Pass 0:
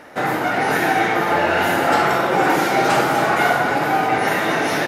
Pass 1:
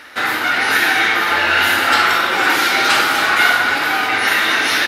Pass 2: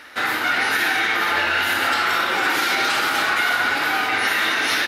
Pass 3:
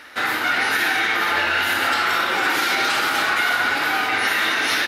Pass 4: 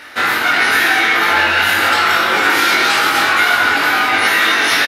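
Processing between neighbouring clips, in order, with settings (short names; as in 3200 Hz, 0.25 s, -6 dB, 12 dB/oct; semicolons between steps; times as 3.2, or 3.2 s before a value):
EQ curve 100 Hz 0 dB, 150 Hz -16 dB, 230 Hz -3 dB, 690 Hz -6 dB, 1400 Hz +8 dB, 2000 Hz +8 dB, 4000 Hz +14 dB, 6800 Hz +6 dB, 9800 Hz +8 dB; gain -1 dB
limiter -7 dBFS, peak gain reduction 5.5 dB; gain -3.5 dB
nothing audible
doubler 21 ms -3 dB; gain +5 dB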